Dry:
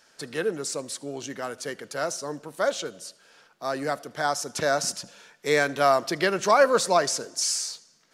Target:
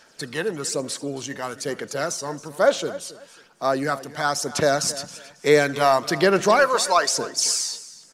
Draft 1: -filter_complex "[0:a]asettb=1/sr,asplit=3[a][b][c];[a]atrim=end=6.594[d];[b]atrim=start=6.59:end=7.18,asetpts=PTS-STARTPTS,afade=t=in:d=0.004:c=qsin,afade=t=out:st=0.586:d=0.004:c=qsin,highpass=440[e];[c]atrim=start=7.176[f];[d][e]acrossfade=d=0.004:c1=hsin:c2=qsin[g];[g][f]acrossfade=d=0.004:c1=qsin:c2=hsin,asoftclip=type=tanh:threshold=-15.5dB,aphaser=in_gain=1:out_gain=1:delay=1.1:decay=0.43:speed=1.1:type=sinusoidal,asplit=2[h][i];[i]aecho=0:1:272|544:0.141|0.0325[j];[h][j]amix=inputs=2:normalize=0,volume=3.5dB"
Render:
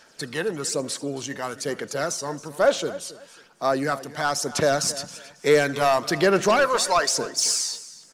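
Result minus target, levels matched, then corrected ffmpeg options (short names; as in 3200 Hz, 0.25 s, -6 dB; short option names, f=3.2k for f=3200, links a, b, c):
soft clip: distortion +12 dB
-filter_complex "[0:a]asettb=1/sr,asplit=3[a][b][c];[a]atrim=end=6.594[d];[b]atrim=start=6.59:end=7.18,asetpts=PTS-STARTPTS,afade=t=in:d=0.004:c=qsin,afade=t=out:st=0.586:d=0.004:c=qsin,highpass=440[e];[c]atrim=start=7.176[f];[d][e]acrossfade=d=0.004:c1=hsin:c2=qsin[g];[g][f]acrossfade=d=0.004:c1=qsin:c2=hsin,asoftclip=type=tanh:threshold=-7dB,aphaser=in_gain=1:out_gain=1:delay=1.1:decay=0.43:speed=1.1:type=sinusoidal,asplit=2[h][i];[i]aecho=0:1:272|544:0.141|0.0325[j];[h][j]amix=inputs=2:normalize=0,volume=3.5dB"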